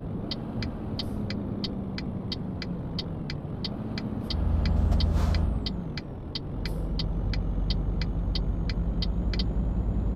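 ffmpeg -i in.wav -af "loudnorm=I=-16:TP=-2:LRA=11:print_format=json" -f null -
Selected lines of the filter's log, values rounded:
"input_i" : "-30.5",
"input_tp" : "-13.5",
"input_lra" : "4.0",
"input_thresh" : "-40.5",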